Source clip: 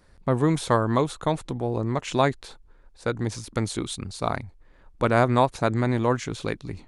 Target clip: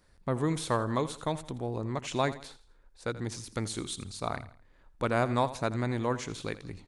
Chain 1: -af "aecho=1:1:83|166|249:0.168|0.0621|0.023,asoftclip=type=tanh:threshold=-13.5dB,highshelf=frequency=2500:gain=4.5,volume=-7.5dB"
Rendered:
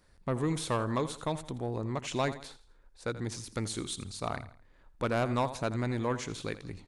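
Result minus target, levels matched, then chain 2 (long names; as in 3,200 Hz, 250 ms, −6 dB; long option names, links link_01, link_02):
soft clipping: distortion +15 dB
-af "aecho=1:1:83|166|249:0.168|0.0621|0.023,asoftclip=type=tanh:threshold=-4dB,highshelf=frequency=2500:gain=4.5,volume=-7.5dB"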